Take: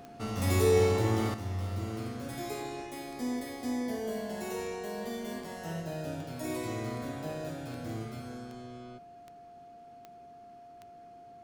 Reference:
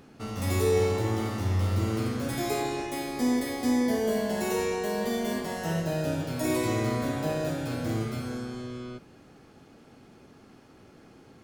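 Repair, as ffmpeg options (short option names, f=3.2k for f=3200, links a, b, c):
-af "adeclick=t=4,bandreject=f=700:w=30,asetnsamples=n=441:p=0,asendcmd='1.34 volume volume 8.5dB',volume=0dB"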